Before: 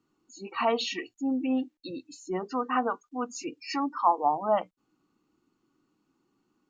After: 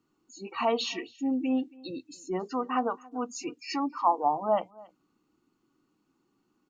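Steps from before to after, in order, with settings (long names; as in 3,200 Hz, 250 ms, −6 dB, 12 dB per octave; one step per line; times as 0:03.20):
dynamic equaliser 1,600 Hz, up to −6 dB, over −45 dBFS, Q 1.8
on a send: single-tap delay 276 ms −23.5 dB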